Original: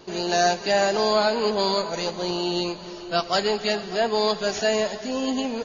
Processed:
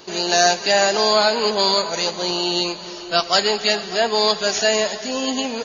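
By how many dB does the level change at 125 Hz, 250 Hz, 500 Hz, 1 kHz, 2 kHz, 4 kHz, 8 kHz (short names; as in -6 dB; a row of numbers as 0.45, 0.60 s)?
-0.5 dB, +0.5 dB, +2.5 dB, +4.0 dB, +6.0 dB, +8.5 dB, n/a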